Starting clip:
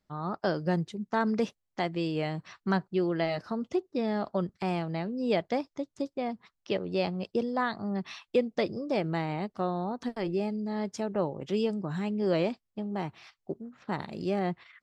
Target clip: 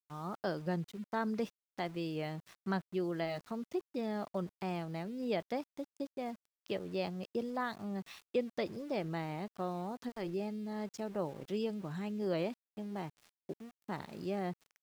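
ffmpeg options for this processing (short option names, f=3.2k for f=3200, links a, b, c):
-af "aeval=exprs='val(0)*gte(abs(val(0)),0.00562)':c=same,volume=-7.5dB"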